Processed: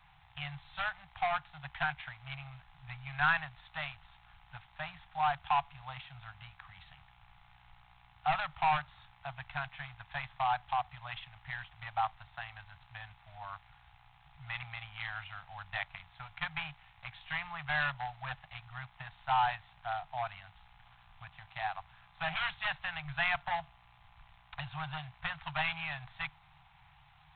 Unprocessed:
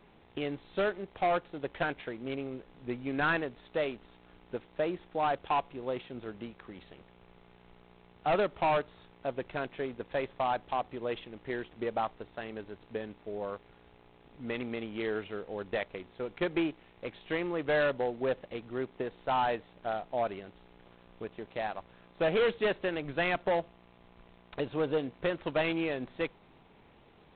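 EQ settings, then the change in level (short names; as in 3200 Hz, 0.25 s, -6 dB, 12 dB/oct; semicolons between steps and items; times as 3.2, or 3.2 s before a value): Chebyshev band-stop 150–760 Hz, order 4; +1.5 dB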